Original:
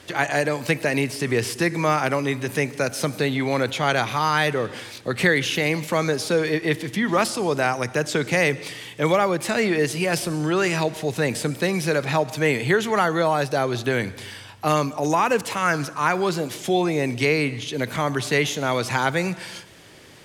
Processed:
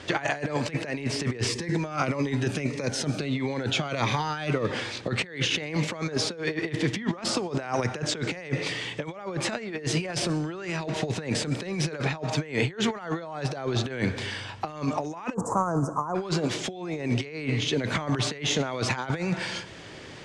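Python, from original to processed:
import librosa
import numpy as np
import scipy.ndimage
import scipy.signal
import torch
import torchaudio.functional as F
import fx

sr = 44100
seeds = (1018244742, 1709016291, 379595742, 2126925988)

y = fx.notch_cascade(x, sr, direction='falling', hz=1.6, at=(1.47, 4.71))
y = fx.cheby1_bandstop(y, sr, low_hz=1100.0, high_hz=7200.0, order=3, at=(15.33, 16.14), fade=0.02)
y = fx.over_compress(y, sr, threshold_db=-27.0, ratio=-0.5)
y = scipy.signal.sosfilt(scipy.signal.butter(4, 8000.0, 'lowpass', fs=sr, output='sos'), y)
y = fx.high_shelf(y, sr, hz=5900.0, db=-7.5)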